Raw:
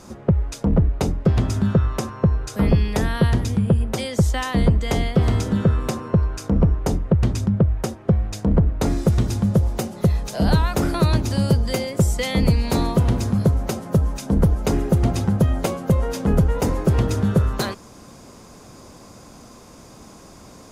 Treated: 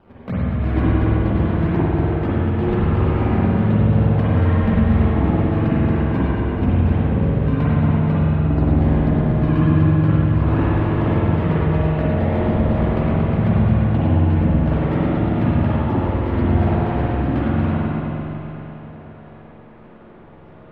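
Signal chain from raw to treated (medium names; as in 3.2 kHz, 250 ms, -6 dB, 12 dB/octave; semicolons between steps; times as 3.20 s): sawtooth pitch modulation +10.5 st, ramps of 885 ms; decimation with a swept rate 19×, swing 160% 1.5 Hz; distance through air 470 m; filtered feedback delay 103 ms, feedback 77%, low-pass 2 kHz, level -5.5 dB; spring tank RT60 3.8 s, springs 45/56 ms, chirp 65 ms, DRR -9.5 dB; trim -8.5 dB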